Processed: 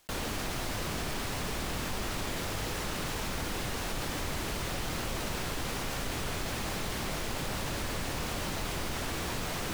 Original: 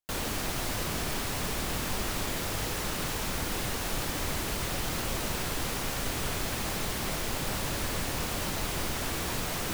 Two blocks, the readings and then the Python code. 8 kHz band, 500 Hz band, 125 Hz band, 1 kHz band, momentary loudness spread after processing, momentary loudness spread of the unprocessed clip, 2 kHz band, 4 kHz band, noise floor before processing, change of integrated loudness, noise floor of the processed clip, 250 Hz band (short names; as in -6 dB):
-4.5 dB, -1.5 dB, -1.5 dB, -1.5 dB, 0 LU, 0 LU, -2.0 dB, -2.5 dB, -33 dBFS, -3.0 dB, -35 dBFS, -1.5 dB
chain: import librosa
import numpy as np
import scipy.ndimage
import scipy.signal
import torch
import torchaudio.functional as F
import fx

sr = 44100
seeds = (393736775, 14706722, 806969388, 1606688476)

y = fx.high_shelf(x, sr, hz=8800.0, db=-7.0)
y = fx.env_flatten(y, sr, amount_pct=50)
y = F.gain(torch.from_numpy(y), -3.5).numpy()